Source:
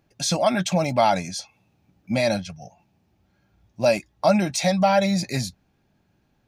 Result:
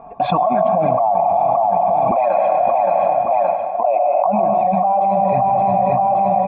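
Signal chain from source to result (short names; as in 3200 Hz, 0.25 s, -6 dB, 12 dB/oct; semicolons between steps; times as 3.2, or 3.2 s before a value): 2.11–4.25 HPF 400 Hz 24 dB/oct; envelope flanger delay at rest 4.5 ms, full sweep at -15 dBFS; vocal tract filter a; feedback echo 0.572 s, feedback 44%, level -14 dB; plate-style reverb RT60 1.5 s, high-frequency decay 0.9×, pre-delay 90 ms, DRR 7 dB; fast leveller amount 100%; gain +8.5 dB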